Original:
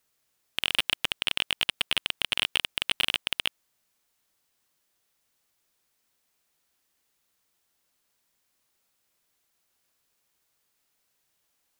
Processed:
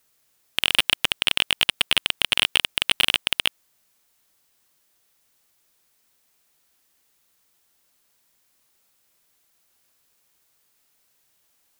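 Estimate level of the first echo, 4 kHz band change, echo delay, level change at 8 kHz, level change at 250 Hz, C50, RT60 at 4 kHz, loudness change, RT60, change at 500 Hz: none, +6.5 dB, none, +8.0 dB, +6.0 dB, none, none, +6.5 dB, none, +6.0 dB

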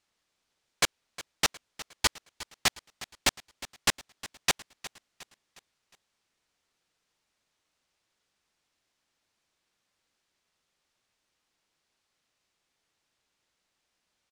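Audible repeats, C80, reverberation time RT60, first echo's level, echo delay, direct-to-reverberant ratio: 3, none, none, -16.5 dB, 0.36 s, none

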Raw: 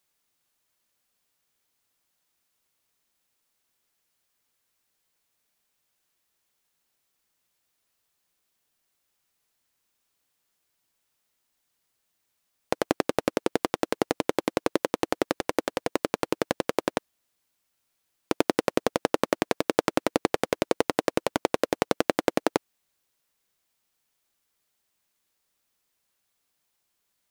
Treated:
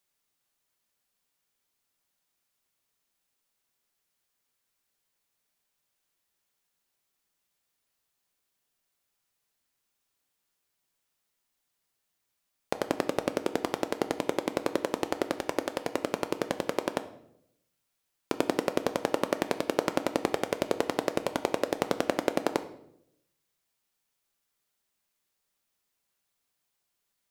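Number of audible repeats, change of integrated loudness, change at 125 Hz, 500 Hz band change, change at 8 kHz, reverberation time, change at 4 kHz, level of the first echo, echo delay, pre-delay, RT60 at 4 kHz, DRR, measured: none, -3.5 dB, -3.0 dB, -3.0 dB, -3.5 dB, 0.75 s, -3.5 dB, none, none, 5 ms, 0.55 s, 9.0 dB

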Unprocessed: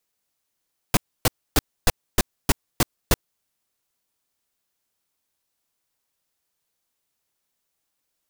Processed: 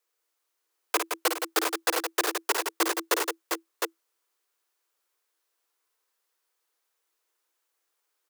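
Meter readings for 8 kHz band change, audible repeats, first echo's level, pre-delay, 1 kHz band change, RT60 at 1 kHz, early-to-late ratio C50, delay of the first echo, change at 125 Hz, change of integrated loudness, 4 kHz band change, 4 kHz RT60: -1.0 dB, 4, -6.5 dB, none, +2.5 dB, none, none, 55 ms, under -40 dB, -2.0 dB, -0.5 dB, none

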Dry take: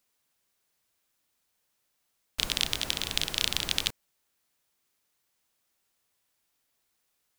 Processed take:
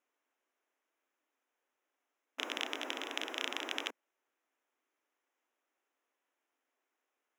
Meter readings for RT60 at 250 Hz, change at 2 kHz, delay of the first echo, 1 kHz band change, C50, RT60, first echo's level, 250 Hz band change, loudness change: none, -4.0 dB, none, -1.0 dB, none, none, none, -3.0 dB, -10.0 dB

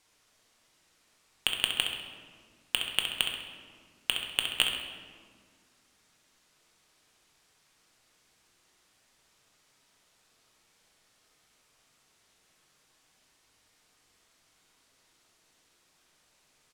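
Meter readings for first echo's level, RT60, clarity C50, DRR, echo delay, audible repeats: -8.0 dB, 1.8 s, 3.0 dB, 0.5 dB, 66 ms, 1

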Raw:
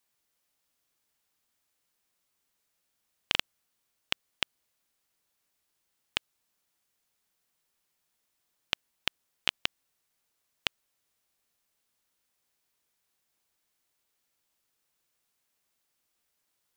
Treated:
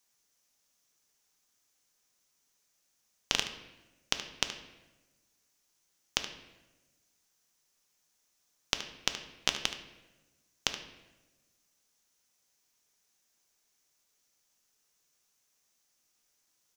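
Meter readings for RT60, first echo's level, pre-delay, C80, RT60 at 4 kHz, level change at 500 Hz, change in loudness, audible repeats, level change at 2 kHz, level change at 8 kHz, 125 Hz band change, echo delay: 1.2 s, -12.0 dB, 4 ms, 11.5 dB, 0.80 s, +3.0 dB, -0.5 dB, 1, -2.0 dB, +10.5 dB, +2.5 dB, 74 ms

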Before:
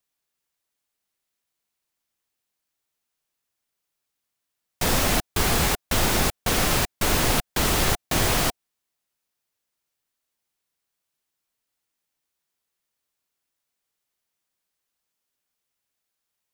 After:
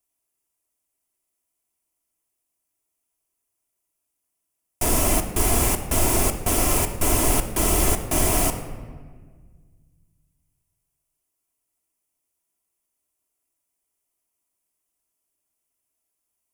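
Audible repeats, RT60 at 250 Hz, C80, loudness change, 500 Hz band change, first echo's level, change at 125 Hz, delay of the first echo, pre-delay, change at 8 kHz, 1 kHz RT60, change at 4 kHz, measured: none, 2.2 s, 11.0 dB, +1.5 dB, +1.5 dB, none, +1.0 dB, none, 3 ms, +4.0 dB, 1.5 s, -6.0 dB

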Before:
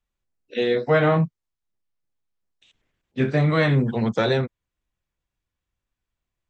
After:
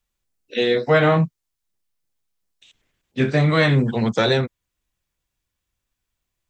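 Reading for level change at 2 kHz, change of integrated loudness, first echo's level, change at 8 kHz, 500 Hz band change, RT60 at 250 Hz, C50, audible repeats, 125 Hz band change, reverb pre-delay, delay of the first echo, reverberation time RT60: +4.0 dB, +2.5 dB, none, n/a, +2.0 dB, none, none, none, +2.0 dB, none, none, none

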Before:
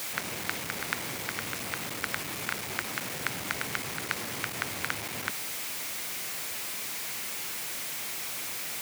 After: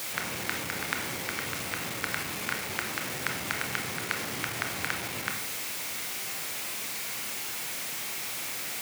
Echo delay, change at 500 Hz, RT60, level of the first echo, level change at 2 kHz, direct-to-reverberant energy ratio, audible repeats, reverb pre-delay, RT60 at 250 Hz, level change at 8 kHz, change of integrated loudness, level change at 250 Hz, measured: none, +1.5 dB, 0.60 s, none, +1.5 dB, 3.5 dB, none, 24 ms, 0.85 s, +0.5 dB, +1.0 dB, +1.5 dB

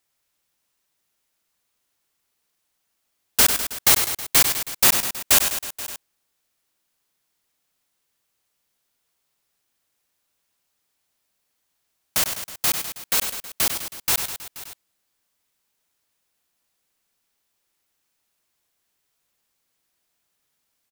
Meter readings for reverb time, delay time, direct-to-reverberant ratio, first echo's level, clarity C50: none, 98 ms, none, -8.0 dB, none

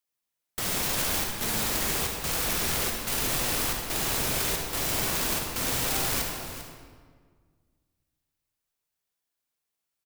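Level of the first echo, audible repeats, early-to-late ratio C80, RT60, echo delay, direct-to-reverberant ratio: -12.0 dB, 1, 3.0 dB, 1.8 s, 0.397 s, 0.5 dB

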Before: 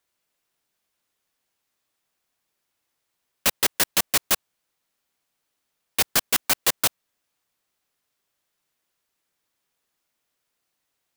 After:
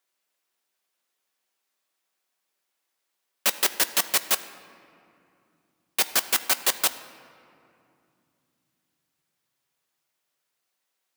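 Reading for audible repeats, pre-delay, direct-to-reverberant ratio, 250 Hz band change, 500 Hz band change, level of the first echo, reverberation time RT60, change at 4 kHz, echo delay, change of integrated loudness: none, 5 ms, 10.0 dB, -6.0 dB, -2.5 dB, none, 2.6 s, -1.0 dB, none, -1.5 dB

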